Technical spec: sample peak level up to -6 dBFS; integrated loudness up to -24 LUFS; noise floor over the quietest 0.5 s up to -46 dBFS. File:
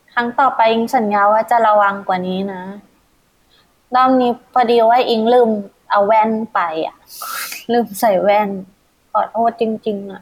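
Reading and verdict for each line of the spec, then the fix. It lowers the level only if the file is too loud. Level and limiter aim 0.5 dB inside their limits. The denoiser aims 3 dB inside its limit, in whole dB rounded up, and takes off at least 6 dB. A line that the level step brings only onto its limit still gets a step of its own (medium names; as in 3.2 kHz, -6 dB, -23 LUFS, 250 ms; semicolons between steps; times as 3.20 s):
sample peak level -4.0 dBFS: fail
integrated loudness -15.5 LUFS: fail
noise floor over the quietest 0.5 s -57 dBFS: pass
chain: trim -9 dB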